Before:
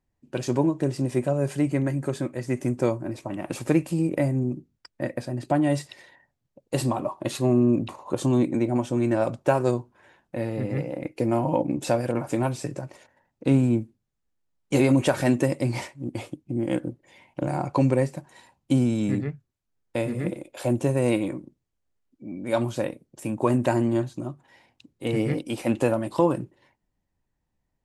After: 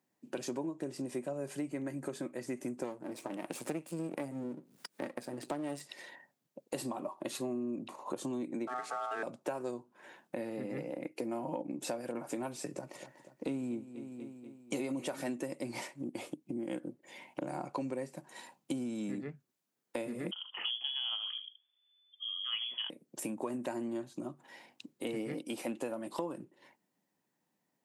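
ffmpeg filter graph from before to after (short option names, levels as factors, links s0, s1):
-filter_complex "[0:a]asettb=1/sr,asplit=3[s0][s1][s2];[s0]atrim=end=2.844[s3];[s1]atrim=start=2.84:end=5.81,asetpts=PTS-STARTPTS,afade=t=in:d=0.004:c=qsin,afade=t=out:st=2.966:d=0.004:c=qsin,aeval=exprs='if(lt(val(0),0),0.251*val(0),val(0))':c=same,equalizer=f=9100:t=o:w=0.25:g=3.5,acompressor=mode=upward:threshold=0.0112:ratio=2.5:attack=3.2:release=140:knee=2.83:detection=peak[s4];[s2]atrim=start=5.806[s5];[s3][s4]acrossfade=d=0.004:c1=hsin:c2=qsin[s6];[s6][s5]acrossfade=d=0.004:c1=qsin:c2=hsin,asettb=1/sr,asplit=3[s7][s8][s9];[s7]atrim=end=8.674[s10];[s8]atrim=start=8.67:end=9.23,asetpts=PTS-STARTPTS,afade=t=in:d=0.004:c=qsin,afade=t=out:st=0.556:d=0.004:c=qsin,aeval=exprs='val(0)+0.5*0.0237*sgn(val(0))':c=same,lowpass=f=9200:w=0.5412,lowpass=f=9200:w=1.3066,aeval=exprs='val(0)*sin(2*PI*1000*n/s)':c=same[s11];[s9]atrim=start=9.226[s12];[s10][s11]acrossfade=d=0.004:c1=hsin:c2=qsin[s13];[s13][s12]acrossfade=d=0.004:c1=qsin:c2=hsin,asettb=1/sr,asplit=3[s14][s15][s16];[s14]atrim=end=12.704[s17];[s15]atrim=start=12.7:end=15.22,asetpts=PTS-STARTPTS,afade=t=in:d=0.004:c=qsin,afade=t=out:st=2.516:d=0.004:c=qsin,bandreject=f=1600:w=11,aecho=1:1:242|484|726|968:0.119|0.0606|0.0309|0.0158,atrim=end_sample=111132[s18];[s16]atrim=start=15.216[s19];[s17][s18]acrossfade=d=0.004:c1=hsin:c2=qsin[s20];[s20][s19]acrossfade=d=0.004:c1=qsin:c2=hsin,asettb=1/sr,asplit=3[s21][s22][s23];[s21]atrim=end=20.314[s24];[s22]atrim=start=20.31:end=22.9,asetpts=PTS-STARTPTS,afade=t=in:d=0.004:c=qsin,afade=t=out:st=2.586:d=0.004:c=qsin,aecho=1:1:76:0.178,atrim=end_sample=114219,lowpass=f=3000:t=q:w=0.5098,lowpass=f=3000:t=q:w=0.6013,lowpass=f=3000:t=q:w=0.9,lowpass=f=3000:t=q:w=2.563,afreqshift=-3500[s25];[s23]atrim=start=22.896[s26];[s24][s25]acrossfade=d=0.004:c1=hsin:c2=qsin[s27];[s27][s26]acrossfade=d=0.004:c1=qsin:c2=hsin,highpass=f=180:w=0.5412,highpass=f=180:w=1.3066,highshelf=f=9100:g=6,acompressor=threshold=0.01:ratio=4,volume=1.26"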